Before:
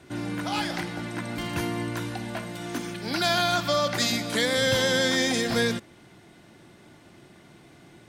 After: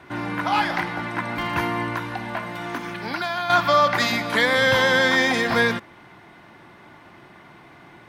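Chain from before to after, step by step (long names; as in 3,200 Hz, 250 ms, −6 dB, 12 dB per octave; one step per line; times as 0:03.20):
0:01.95–0:03.50: downward compressor 6 to 1, threshold −30 dBFS, peak gain reduction 10.5 dB
octave-band graphic EQ 1,000/2,000/8,000 Hz +11/+6/−9 dB
level +1 dB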